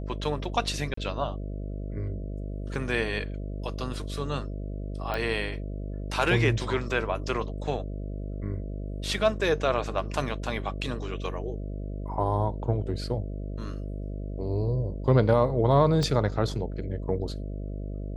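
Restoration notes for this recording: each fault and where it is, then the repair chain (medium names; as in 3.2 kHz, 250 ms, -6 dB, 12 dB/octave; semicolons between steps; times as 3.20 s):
buzz 50 Hz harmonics 13 -34 dBFS
0.94–0.97 s: dropout 34 ms
5.14 s: pop -17 dBFS
16.03 s: pop -17 dBFS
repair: de-click; de-hum 50 Hz, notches 13; interpolate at 0.94 s, 34 ms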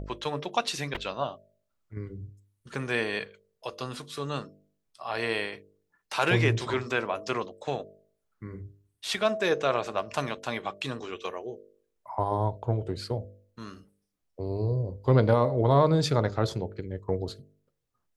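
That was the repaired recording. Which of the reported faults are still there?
16.03 s: pop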